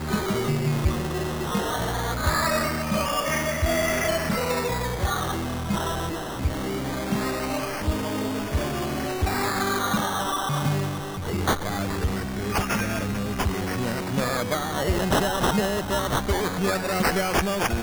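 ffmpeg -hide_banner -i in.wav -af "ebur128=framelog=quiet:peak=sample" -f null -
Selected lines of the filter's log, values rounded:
Integrated loudness:
  I:         -25.5 LUFS
  Threshold: -35.5 LUFS
Loudness range:
  LRA:         3.3 LU
  Threshold: -45.7 LUFS
  LRA low:   -27.5 LUFS
  LRA high:  -24.1 LUFS
Sample peak:
  Peak:      -11.2 dBFS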